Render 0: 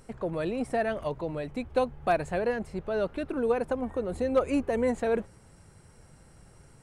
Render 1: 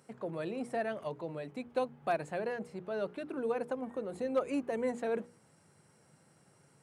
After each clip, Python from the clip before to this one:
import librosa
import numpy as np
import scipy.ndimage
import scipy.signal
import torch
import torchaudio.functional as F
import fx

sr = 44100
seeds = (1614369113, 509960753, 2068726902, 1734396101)

y = scipy.signal.sosfilt(scipy.signal.butter(4, 130.0, 'highpass', fs=sr, output='sos'), x)
y = fx.hum_notches(y, sr, base_hz=60, count=8)
y = y * 10.0 ** (-6.5 / 20.0)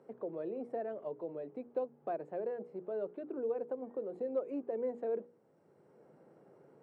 y = fx.bandpass_q(x, sr, hz=430.0, q=1.7)
y = fx.band_squash(y, sr, depth_pct=40)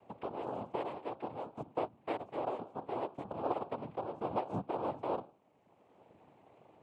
y = fx.noise_vocoder(x, sr, seeds[0], bands=4)